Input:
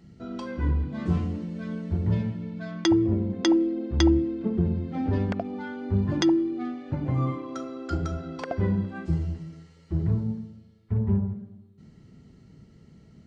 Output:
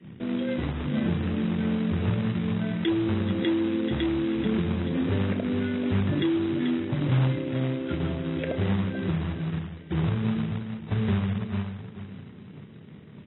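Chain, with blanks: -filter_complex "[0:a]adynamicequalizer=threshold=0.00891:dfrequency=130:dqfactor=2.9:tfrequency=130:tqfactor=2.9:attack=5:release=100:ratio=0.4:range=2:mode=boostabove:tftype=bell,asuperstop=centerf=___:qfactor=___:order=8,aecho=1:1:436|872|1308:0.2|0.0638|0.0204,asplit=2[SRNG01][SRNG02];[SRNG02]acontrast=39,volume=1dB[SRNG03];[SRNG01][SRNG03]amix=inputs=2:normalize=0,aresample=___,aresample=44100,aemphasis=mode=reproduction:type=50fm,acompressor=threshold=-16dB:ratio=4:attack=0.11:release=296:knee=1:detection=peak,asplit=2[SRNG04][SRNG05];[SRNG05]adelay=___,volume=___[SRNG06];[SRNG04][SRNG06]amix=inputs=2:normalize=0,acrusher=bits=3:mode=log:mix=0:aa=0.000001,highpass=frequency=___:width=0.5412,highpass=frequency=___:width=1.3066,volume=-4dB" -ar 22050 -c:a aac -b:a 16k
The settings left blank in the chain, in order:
1000, 0.97, 8000, 32, -12dB, 93, 93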